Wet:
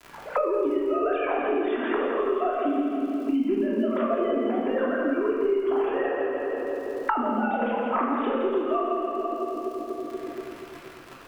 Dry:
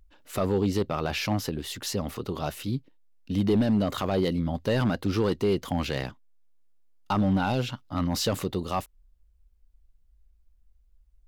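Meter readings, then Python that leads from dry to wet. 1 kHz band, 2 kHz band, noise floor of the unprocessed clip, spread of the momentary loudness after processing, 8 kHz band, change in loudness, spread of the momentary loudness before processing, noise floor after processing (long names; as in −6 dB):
+6.0 dB, +4.0 dB, −63 dBFS, 9 LU, below −15 dB, +1.5 dB, 9 LU, −44 dBFS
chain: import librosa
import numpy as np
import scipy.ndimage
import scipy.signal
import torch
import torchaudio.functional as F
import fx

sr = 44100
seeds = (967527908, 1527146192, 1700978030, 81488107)

y = fx.sine_speech(x, sr)
y = fx.recorder_agc(y, sr, target_db=-17.5, rise_db_per_s=35.0, max_gain_db=30)
y = scipy.signal.sosfilt(scipy.signal.butter(2, 1700.0, 'lowpass', fs=sr, output='sos'), y)
y = fx.env_lowpass(y, sr, base_hz=710.0, full_db=-20.0)
y = scipy.signal.sosfilt(scipy.signal.butter(2, 320.0, 'highpass', fs=sr, output='sos'), y)
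y = fx.dmg_crackle(y, sr, seeds[0], per_s=66.0, level_db=-47.0)
y = fx.echo_split(y, sr, split_hz=460.0, low_ms=239, high_ms=166, feedback_pct=52, wet_db=-6.0)
y = fx.cheby_harmonics(y, sr, harmonics=(2,), levels_db=(-27,), full_scale_db=-11.5)
y = fx.room_shoebox(y, sr, seeds[1], volume_m3=910.0, walls='mixed', distance_m=3.0)
y = fx.band_squash(y, sr, depth_pct=100)
y = F.gain(torch.from_numpy(y), -7.5).numpy()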